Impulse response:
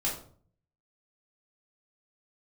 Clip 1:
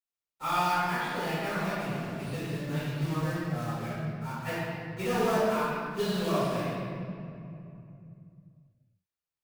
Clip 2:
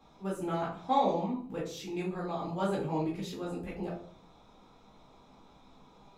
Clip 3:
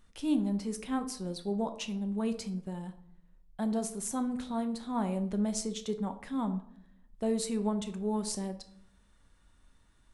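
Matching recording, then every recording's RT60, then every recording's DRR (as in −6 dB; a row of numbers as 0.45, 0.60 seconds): 2; 2.6, 0.50, 0.65 seconds; −16.0, −5.5, 7.5 decibels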